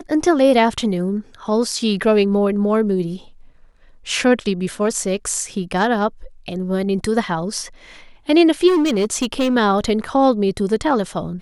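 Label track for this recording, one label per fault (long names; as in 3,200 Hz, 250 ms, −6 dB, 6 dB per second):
8.670000	9.560000	clipping −13.5 dBFS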